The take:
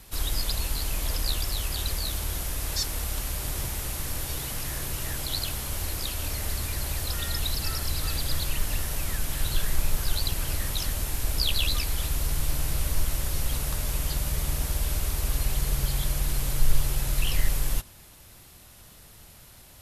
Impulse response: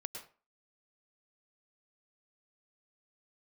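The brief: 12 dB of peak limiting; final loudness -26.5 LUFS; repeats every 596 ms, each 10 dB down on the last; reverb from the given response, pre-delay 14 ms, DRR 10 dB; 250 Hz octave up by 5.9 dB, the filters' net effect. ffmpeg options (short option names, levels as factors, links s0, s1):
-filter_complex "[0:a]equalizer=f=250:t=o:g=8.5,alimiter=limit=0.112:level=0:latency=1,aecho=1:1:596|1192|1788|2384:0.316|0.101|0.0324|0.0104,asplit=2[s0][s1];[1:a]atrim=start_sample=2205,adelay=14[s2];[s1][s2]afir=irnorm=-1:irlink=0,volume=0.376[s3];[s0][s3]amix=inputs=2:normalize=0,volume=1.41"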